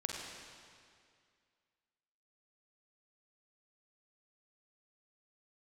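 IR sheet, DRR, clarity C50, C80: −1.0 dB, 0.0 dB, 1.5 dB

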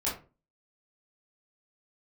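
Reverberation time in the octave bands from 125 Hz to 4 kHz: 0.40, 0.40, 0.40, 0.30, 0.25, 0.20 seconds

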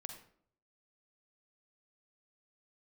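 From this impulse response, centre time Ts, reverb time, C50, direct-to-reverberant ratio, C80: 21 ms, 0.60 s, 6.0 dB, 4.5 dB, 9.5 dB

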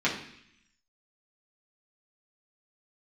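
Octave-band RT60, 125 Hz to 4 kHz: 0.90, 0.95, 0.65, 0.70, 0.95, 0.90 seconds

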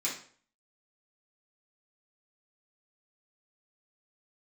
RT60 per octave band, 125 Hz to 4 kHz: 0.50, 0.50, 0.50, 0.45, 0.45, 0.40 seconds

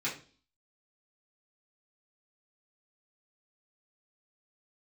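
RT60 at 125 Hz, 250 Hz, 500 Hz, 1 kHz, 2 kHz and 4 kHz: 0.50, 0.55, 0.45, 0.35, 0.35, 0.45 seconds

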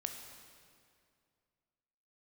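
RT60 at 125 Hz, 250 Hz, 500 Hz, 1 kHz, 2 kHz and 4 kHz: 2.6, 2.4, 2.4, 2.2, 2.0, 1.8 seconds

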